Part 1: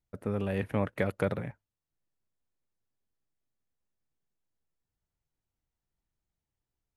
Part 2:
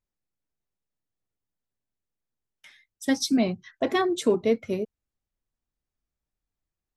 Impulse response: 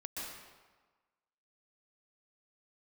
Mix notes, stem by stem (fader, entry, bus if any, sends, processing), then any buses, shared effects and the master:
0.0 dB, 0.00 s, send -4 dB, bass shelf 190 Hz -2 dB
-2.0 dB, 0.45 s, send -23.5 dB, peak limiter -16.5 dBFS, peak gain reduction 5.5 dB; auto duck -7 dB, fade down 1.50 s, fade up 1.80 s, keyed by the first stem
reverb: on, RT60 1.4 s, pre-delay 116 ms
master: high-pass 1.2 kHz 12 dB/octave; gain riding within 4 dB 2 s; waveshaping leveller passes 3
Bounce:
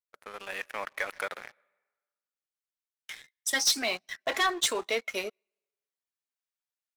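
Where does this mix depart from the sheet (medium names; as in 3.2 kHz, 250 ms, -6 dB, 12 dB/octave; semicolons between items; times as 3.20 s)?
stem 1 0.0 dB -> -9.5 dB; reverb return -9.0 dB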